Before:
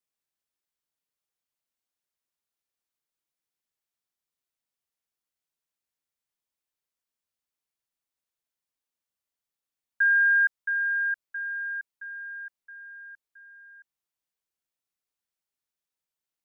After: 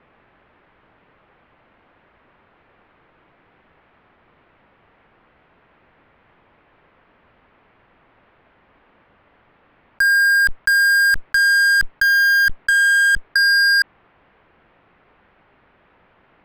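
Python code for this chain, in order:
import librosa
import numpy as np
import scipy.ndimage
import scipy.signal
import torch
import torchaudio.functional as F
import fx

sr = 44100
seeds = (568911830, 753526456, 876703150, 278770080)

p1 = scipy.signal.sosfilt(scipy.signal.bessel(6, 1500.0, 'lowpass', norm='mag', fs=sr, output='sos'), x)
p2 = fx.fuzz(p1, sr, gain_db=50.0, gate_db=-54.0)
p3 = p1 + (p2 * librosa.db_to_amplitude(-12.0))
p4 = fx.env_flatten(p3, sr, amount_pct=100)
y = p4 * librosa.db_to_amplitude(4.5)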